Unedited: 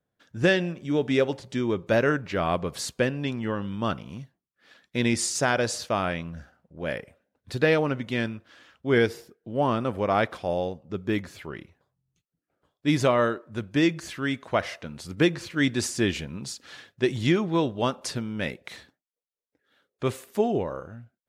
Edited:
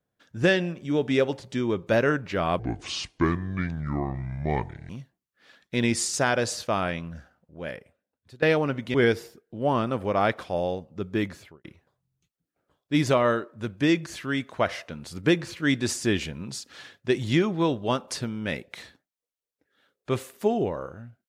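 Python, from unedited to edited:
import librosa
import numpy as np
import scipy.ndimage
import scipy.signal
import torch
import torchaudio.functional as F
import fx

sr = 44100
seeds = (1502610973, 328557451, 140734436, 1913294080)

y = fx.studio_fade_out(x, sr, start_s=11.27, length_s=0.31)
y = fx.edit(y, sr, fx.speed_span(start_s=2.59, length_s=1.52, speed=0.66),
    fx.fade_out_to(start_s=6.29, length_s=1.35, floor_db=-21.0),
    fx.cut(start_s=8.16, length_s=0.72), tone=tone)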